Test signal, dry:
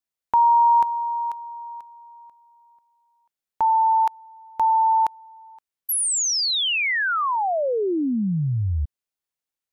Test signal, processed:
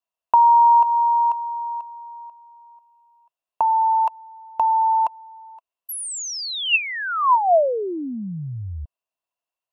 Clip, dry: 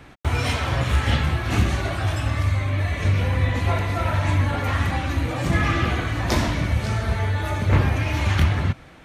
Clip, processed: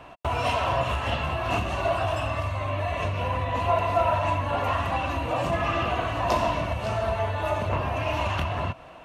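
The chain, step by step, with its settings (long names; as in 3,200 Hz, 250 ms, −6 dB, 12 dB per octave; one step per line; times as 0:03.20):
downward compressor 3 to 1, threshold −21 dBFS
hollow resonant body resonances 680/980/2,700 Hz, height 17 dB, ringing for 20 ms
level −6.5 dB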